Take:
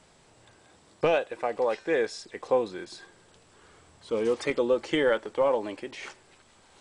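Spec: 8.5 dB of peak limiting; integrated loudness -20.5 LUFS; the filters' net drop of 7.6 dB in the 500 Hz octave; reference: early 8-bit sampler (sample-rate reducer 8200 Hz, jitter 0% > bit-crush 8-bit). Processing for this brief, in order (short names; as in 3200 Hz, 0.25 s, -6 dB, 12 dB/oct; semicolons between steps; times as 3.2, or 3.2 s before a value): bell 500 Hz -8.5 dB; limiter -22 dBFS; sample-rate reducer 8200 Hz, jitter 0%; bit-crush 8-bit; gain +15 dB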